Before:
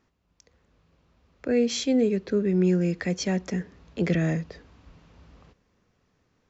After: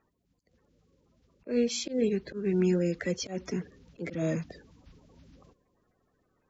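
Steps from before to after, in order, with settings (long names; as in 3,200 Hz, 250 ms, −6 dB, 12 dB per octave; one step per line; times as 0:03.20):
spectral magnitudes quantised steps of 30 dB
volume swells 148 ms
level −3 dB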